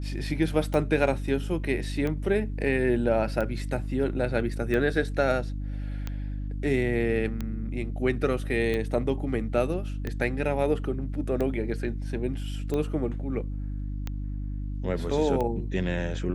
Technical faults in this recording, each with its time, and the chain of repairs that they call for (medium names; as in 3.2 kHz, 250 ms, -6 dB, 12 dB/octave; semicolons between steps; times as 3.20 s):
hum 50 Hz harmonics 6 -32 dBFS
tick 45 rpm -18 dBFS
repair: de-click; de-hum 50 Hz, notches 6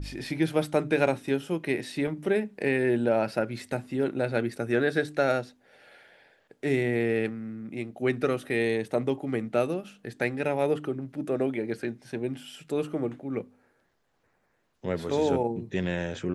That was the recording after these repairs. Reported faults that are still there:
nothing left